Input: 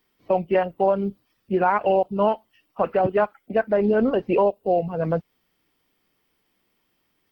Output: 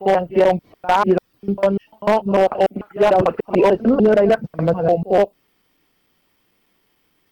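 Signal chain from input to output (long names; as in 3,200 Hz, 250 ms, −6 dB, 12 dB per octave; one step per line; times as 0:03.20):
slices reordered back to front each 148 ms, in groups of 6
dynamic equaliser 2,200 Hz, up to −6 dB, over −39 dBFS, Q 1.1
echo ahead of the sound 51 ms −17 dB
wave folding −13 dBFS
level +6.5 dB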